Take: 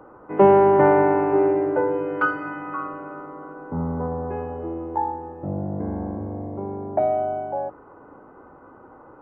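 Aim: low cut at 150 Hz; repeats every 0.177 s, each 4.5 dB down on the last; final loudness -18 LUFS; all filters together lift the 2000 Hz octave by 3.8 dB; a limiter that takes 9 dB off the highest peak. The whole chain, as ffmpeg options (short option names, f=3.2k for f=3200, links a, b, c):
-af "highpass=150,equalizer=f=2k:t=o:g=6,alimiter=limit=-12.5dB:level=0:latency=1,aecho=1:1:177|354|531|708|885|1062|1239|1416|1593:0.596|0.357|0.214|0.129|0.0772|0.0463|0.0278|0.0167|0.01,volume=7dB"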